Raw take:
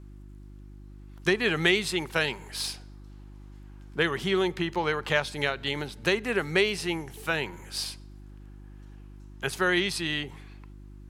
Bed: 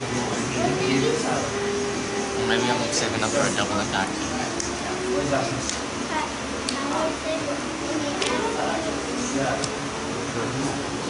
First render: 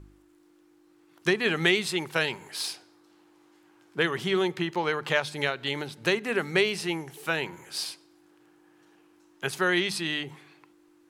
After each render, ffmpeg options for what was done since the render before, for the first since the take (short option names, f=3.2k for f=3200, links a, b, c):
-af "bandreject=f=50:t=h:w=4,bandreject=f=100:t=h:w=4,bandreject=f=150:t=h:w=4,bandreject=f=200:t=h:w=4,bandreject=f=250:t=h:w=4"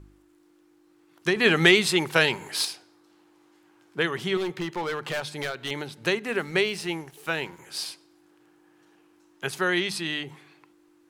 -filter_complex "[0:a]asettb=1/sr,asplit=3[a][b][c];[a]atrim=end=1.364[d];[b]atrim=start=1.36:end=2.65,asetpts=PTS-STARTPTS,afade=t=in:d=0.004:c=qsin,afade=t=out:st=1.286:d=0.004:c=qsin,acontrast=60[e];[c]atrim=start=2.646[f];[d][e]acrossfade=d=0.004:c1=hsin:c2=qsin[g];[g][f]acrossfade=d=0.004:c1=qsin:c2=hsin,asettb=1/sr,asplit=3[h][i][j];[h]atrim=end=4.374[k];[i]atrim=start=4.37:end=5.71,asetpts=PTS-STARTPTS,afade=t=in:d=0.004:c=qsin,afade=t=out:st=1.336:d=0.004:c=qsin,volume=25dB,asoftclip=hard,volume=-25dB[l];[j]atrim=start=5.706[m];[k][l]acrossfade=d=0.004:c1=hsin:c2=qsin[n];[n][m]acrossfade=d=0.004:c1=qsin:c2=hsin,asettb=1/sr,asplit=3[o][p][q];[o]atrim=end=6.284[r];[p]atrim=start=6.28:end=7.59,asetpts=PTS-STARTPTS,afade=t=in:d=0.004:c=qsin,afade=t=out:st=1.306:d=0.004:c=qsin,aeval=exprs='sgn(val(0))*max(abs(val(0))-0.00237,0)':c=same[s];[q]atrim=start=7.586[t];[r][s]acrossfade=d=0.004:c1=hsin:c2=qsin[u];[u][t]acrossfade=d=0.004:c1=qsin:c2=hsin"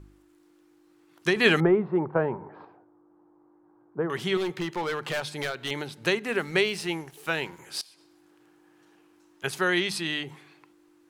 -filter_complex "[0:a]asettb=1/sr,asplit=3[a][b][c];[a]atrim=end=1.604[d];[b]atrim=start=1.6:end=4.1,asetpts=PTS-STARTPTS,afade=t=in:d=0.004:c=qsin,afade=t=out:st=2.496:d=0.004:c=qsin,lowpass=f=1.1k:w=0.5412,lowpass=f=1.1k:w=1.3066[e];[c]atrim=start=4.096[f];[d][e]acrossfade=d=0.004:c1=hsin:c2=qsin[g];[g][f]acrossfade=d=0.004:c1=qsin:c2=hsin,asettb=1/sr,asplit=3[h][i][j];[h]atrim=end=7.814[k];[i]atrim=start=7.81:end=9.44,asetpts=PTS-STARTPTS,afade=t=in:d=0.004:c=qsin,afade=t=out:st=1.626:d=0.004:c=qsin,acompressor=threshold=-49dB:ratio=16:attack=3.2:release=140:knee=1:detection=peak[l];[j]atrim=start=9.436[m];[k][l]acrossfade=d=0.004:c1=hsin:c2=qsin[n];[n][m]acrossfade=d=0.004:c1=qsin:c2=hsin"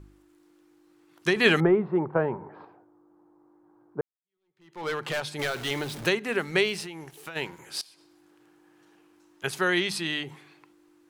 -filter_complex "[0:a]asettb=1/sr,asplit=3[a][b][c];[a]atrim=end=5.394[d];[b]atrim=start=5.39:end=6.09,asetpts=PTS-STARTPTS,afade=t=in:d=0.004:c=qsin,afade=t=out:st=0.696:d=0.004:c=qsin,aeval=exprs='val(0)+0.5*0.0178*sgn(val(0))':c=same[e];[c]atrim=start=6.086[f];[d][e]acrossfade=d=0.004:c1=hsin:c2=qsin[g];[g][f]acrossfade=d=0.004:c1=qsin:c2=hsin,asplit=3[h][i][j];[h]afade=t=out:st=6.83:d=0.02[k];[i]acompressor=threshold=-34dB:ratio=12:attack=3.2:release=140:knee=1:detection=peak,afade=t=in:st=6.83:d=0.02,afade=t=out:st=7.35:d=0.02[l];[j]afade=t=in:st=7.35:d=0.02[m];[k][l][m]amix=inputs=3:normalize=0,asplit=2[n][o];[n]atrim=end=4.01,asetpts=PTS-STARTPTS,afade=t=out:st=4.006:d=0.004:c=hsin[p];[o]atrim=start=4.01,asetpts=PTS-STARTPTS,afade=t=in:d=0.86:c=exp[q];[p][q]concat=n=2:v=0:a=1"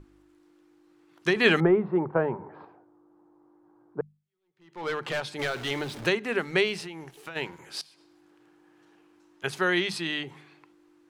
-af "highshelf=f=8.4k:g=-10.5,bandreject=f=50:t=h:w=6,bandreject=f=100:t=h:w=6,bandreject=f=150:t=h:w=6,bandreject=f=200:t=h:w=6"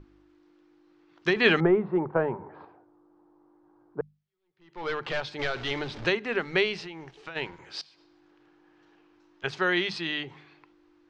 -af "asubboost=boost=3.5:cutoff=78,lowpass=f=5.5k:w=0.5412,lowpass=f=5.5k:w=1.3066"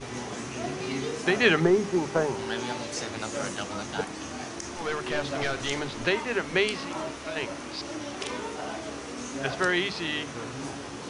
-filter_complex "[1:a]volume=-10dB[a];[0:a][a]amix=inputs=2:normalize=0"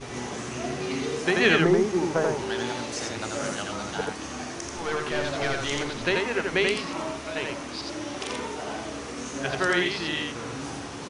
-af "aecho=1:1:85:0.708"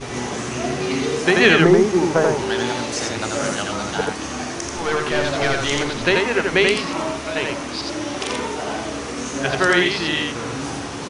-af "volume=7.5dB,alimiter=limit=-2dB:level=0:latency=1"